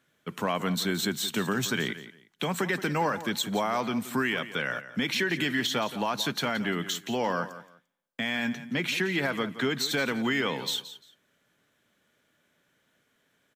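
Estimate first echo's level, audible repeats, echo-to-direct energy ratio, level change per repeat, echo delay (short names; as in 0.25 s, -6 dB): -14.0 dB, 2, -14.0 dB, -13.0 dB, 0.173 s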